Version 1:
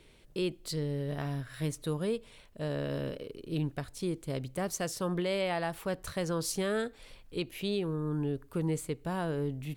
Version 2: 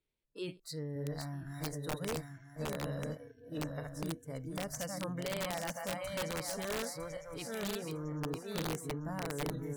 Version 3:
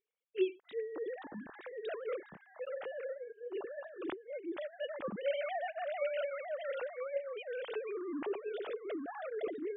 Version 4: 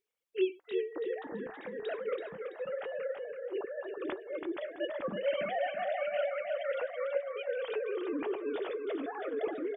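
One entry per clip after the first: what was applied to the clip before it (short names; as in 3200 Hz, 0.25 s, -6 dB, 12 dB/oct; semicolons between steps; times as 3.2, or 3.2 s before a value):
regenerating reverse delay 0.478 s, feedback 61%, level -3 dB; spectral noise reduction 23 dB; wrapped overs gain 22.5 dB; gain -6.5 dB
sine-wave speech
flange 0.28 Hz, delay 3 ms, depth 5 ms, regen -74%; feedback echo 0.331 s, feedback 31%, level -6 dB; gain +7.5 dB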